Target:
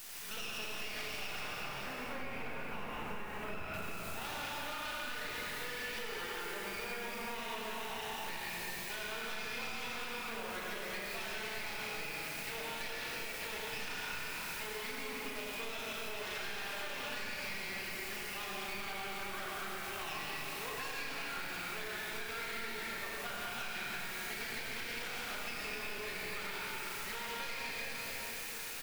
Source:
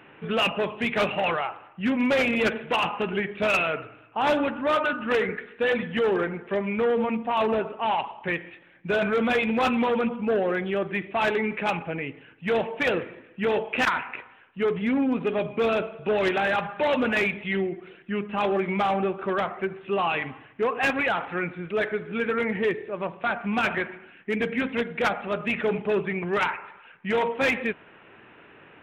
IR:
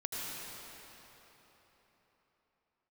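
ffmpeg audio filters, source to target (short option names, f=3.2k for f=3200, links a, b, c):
-filter_complex "[0:a]aeval=exprs='val(0)+0.5*0.00944*sgn(val(0))':c=same,aderivative,asplit=2[a][b];[b]adelay=35,volume=-4.5dB[c];[a][c]amix=inputs=2:normalize=0,aeval=exprs='max(val(0),0)':c=same,asettb=1/sr,asplit=3[d][e][f];[d]atrim=end=1.394[g];[e]atrim=start=1.39:end=3.74,asetpts=PTS-STARTPTS,afade=t=in:d=0.004:c=qsin,afade=t=out:st=2.346:d=0.004:c=qsin,lowpass=1.4k[h];[f]atrim=start=3.736[i];[g][h]acrossfade=d=0.004:c1=hsin:c2=qsin[j];[j][i]acrossfade=d=0.004:c1=qsin:c2=hsin,alimiter=level_in=6.5dB:limit=-24dB:level=0:latency=1,volume=-6.5dB[k];[1:a]atrim=start_sample=2205[l];[k][l]afir=irnorm=-1:irlink=0,acrusher=bits=9:mix=0:aa=0.000001,acompressor=threshold=-45dB:ratio=6,volume=8dB"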